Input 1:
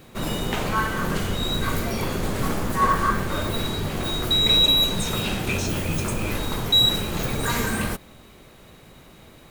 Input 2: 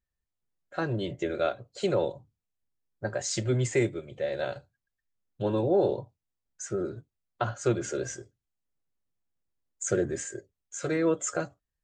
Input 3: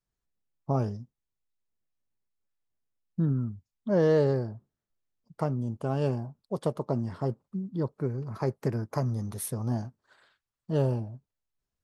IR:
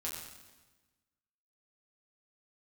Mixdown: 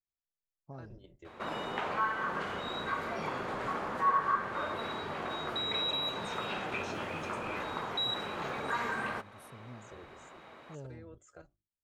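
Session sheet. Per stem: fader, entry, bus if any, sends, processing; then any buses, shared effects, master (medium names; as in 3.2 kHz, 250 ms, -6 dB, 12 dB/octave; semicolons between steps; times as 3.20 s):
+2.5 dB, 1.25 s, send -21 dB, band-pass filter 1.1 kHz, Q 0.97
-19.5 dB, 0.00 s, no send, octave divider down 2 oct, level -2 dB; hum notches 50/100/150/200/250/300/350/400 Hz; level held to a coarse grid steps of 10 dB
-19.0 dB, 0.00 s, no send, none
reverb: on, RT60 1.2 s, pre-delay 6 ms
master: treble shelf 7.6 kHz -7.5 dB; compression 1.5:1, threshold -43 dBFS, peak gain reduction 11 dB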